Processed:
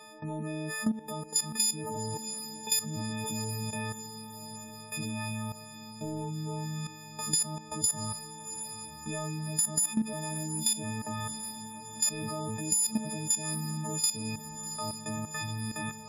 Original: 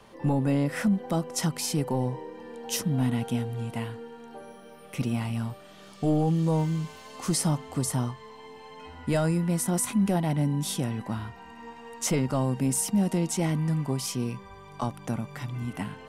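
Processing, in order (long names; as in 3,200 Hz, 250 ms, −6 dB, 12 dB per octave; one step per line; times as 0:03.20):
every partial snapped to a pitch grid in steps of 6 semitones
spectral peaks only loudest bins 32
in parallel at 0 dB: brickwall limiter −16 dBFS, peak gain reduction 11.5 dB
on the sum: output level in coarse steps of 15 dB
feedback delay with all-pass diffusion 731 ms, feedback 60%, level −15 dB
downward compressor 5 to 1, threshold −19 dBFS, peak gain reduction 6.5 dB
level −5.5 dB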